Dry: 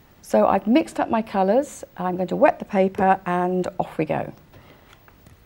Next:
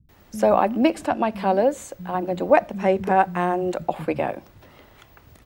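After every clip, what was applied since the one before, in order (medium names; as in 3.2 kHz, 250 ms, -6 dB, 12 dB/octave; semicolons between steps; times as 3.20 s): bands offset in time lows, highs 90 ms, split 190 Hz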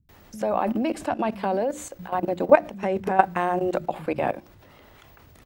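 hum notches 60/120/180/240/300/360 Hz; level held to a coarse grid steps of 14 dB; trim +4.5 dB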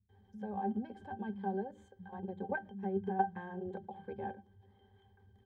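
treble shelf 5.1 kHz +4.5 dB; pitch-class resonator G, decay 0.11 s; trim -4.5 dB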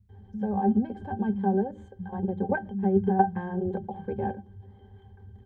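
tilt EQ -2.5 dB/octave; trim +8 dB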